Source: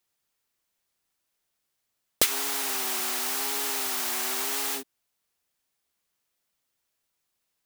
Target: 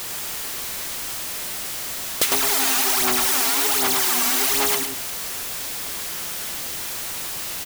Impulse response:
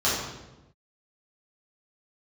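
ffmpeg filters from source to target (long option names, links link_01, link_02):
-filter_complex "[0:a]aeval=exprs='val(0)+0.5*0.0596*sgn(val(0))':channel_layout=same,asettb=1/sr,asplit=3[link_01][link_02][link_03];[link_01]atrim=end=2.324[link_04];[link_02]atrim=start=2.32:end=4.75,asetpts=PTS-STARTPTS,afade=type=in:duration=0.004:curve=qsin,afade=type=out:start_time=2.426:duration=0.004:curve=qsin,aphaser=in_gain=1:out_gain=1:delay=4.4:decay=0.71:speed=1.3:type=sinusoidal[link_05];[link_03]atrim=start=4.746[link_06];[link_04][link_05]acrossfade=duration=0.004:curve1=hsin:curve2=qsin[link_07];[link_07][link_06]acrossfade=duration=0.004:curve1=qsin:curve2=hsin,aecho=1:1:104:0.596"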